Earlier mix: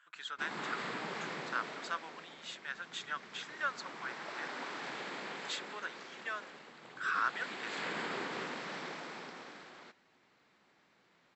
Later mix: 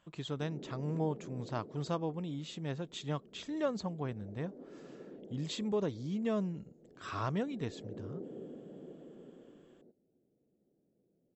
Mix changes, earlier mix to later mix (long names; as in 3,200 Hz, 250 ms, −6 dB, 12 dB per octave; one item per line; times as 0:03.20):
speech: remove high-pass with resonance 1,500 Hz, resonance Q 6
background: add inverse Chebyshev low-pass filter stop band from 1,000 Hz, stop band 40 dB